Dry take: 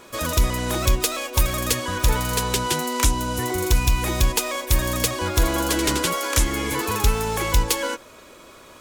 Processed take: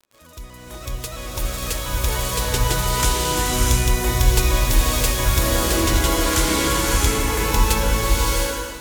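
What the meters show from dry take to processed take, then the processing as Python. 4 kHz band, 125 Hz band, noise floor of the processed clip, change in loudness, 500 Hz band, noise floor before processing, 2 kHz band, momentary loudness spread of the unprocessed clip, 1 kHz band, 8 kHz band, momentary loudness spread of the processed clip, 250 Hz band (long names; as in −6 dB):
+2.5 dB, +3.0 dB, −41 dBFS, +2.5 dB, +1.5 dB, −46 dBFS, +2.0 dB, 3 LU, +1.5 dB, +2.5 dB, 10 LU, +1.5 dB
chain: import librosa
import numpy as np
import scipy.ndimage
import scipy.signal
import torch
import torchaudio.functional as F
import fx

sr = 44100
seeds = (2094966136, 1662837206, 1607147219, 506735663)

y = fx.fade_in_head(x, sr, length_s=2.52)
y = fx.dmg_crackle(y, sr, seeds[0], per_s=72.0, level_db=-35.0)
y = fx.rev_bloom(y, sr, seeds[1], attack_ms=690, drr_db=-4.5)
y = y * 10.0 ** (-2.5 / 20.0)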